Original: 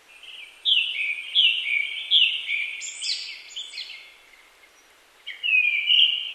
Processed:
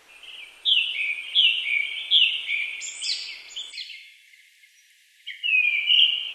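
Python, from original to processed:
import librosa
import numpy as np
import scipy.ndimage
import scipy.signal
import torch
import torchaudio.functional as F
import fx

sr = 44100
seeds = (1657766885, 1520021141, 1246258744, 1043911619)

y = fx.cheby1_highpass(x, sr, hz=1700.0, order=8, at=(3.71, 5.57), fade=0.02)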